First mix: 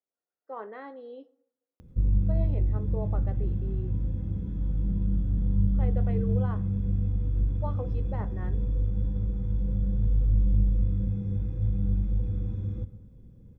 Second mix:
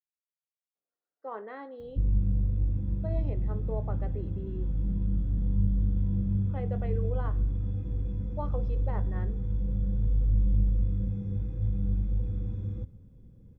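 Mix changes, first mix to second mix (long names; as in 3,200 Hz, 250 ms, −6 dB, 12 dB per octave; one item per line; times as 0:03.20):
speech: entry +0.75 s
background: send −9.5 dB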